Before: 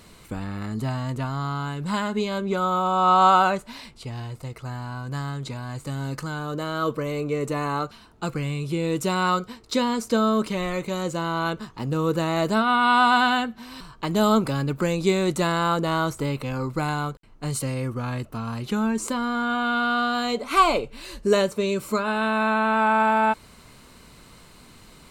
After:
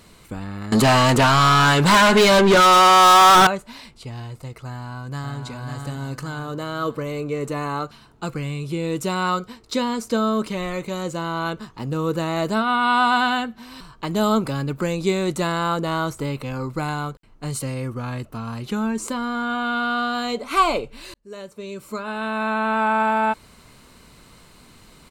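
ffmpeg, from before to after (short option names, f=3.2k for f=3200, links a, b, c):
-filter_complex "[0:a]asettb=1/sr,asplit=3[a][b][c];[a]atrim=end=0.724[d];[b]atrim=start=0.72:end=3.47,asetpts=PTS-STARTPTS,afade=t=in:d=0.004:c=qsin,afade=t=out:st=2.746:d=0.004:c=qsin,asplit=2[e][f];[f]highpass=f=720:p=1,volume=34dB,asoftclip=type=tanh:threshold=-6dB[g];[e][g]amix=inputs=2:normalize=0,lowpass=f=6.7k:p=1,volume=-6dB[h];[c]atrim=start=3.466[i];[d][h]acrossfade=d=0.004:c1=hsin:c2=qsin[j];[j][i]acrossfade=d=0.004:c1=qsin:c2=hsin,asplit=2[k][l];[l]afade=t=in:st=4.68:d=0.01,afade=t=out:st=5.42:d=0.01,aecho=0:1:550|1100|1650|2200|2750|3300:0.595662|0.297831|0.148916|0.0744578|0.0372289|0.0186144[m];[k][m]amix=inputs=2:normalize=0,asplit=2[n][o];[n]atrim=end=21.14,asetpts=PTS-STARTPTS,afade=t=out:st=21.136:d=0.004:c=hsin[p];[o]atrim=start=21.14,asetpts=PTS-STARTPTS,afade=t=in:d=1.57[q];[p][q]concat=n=2:v=0:a=1"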